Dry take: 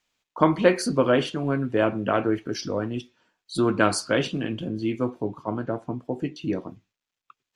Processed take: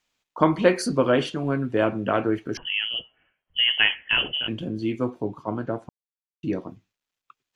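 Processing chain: 2.57–4.48 inverted band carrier 3200 Hz; 5.89–6.43 mute

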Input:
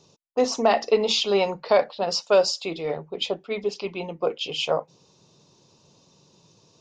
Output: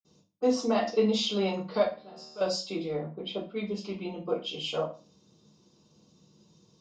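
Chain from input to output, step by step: 1.79–2.36 resonator 76 Hz, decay 1.4 s, harmonics all, mix 90%; 2.88–3.49 LPF 2100 Hz -> 4000 Hz 12 dB/oct; reverb RT60 0.35 s, pre-delay 47 ms, DRR -60 dB

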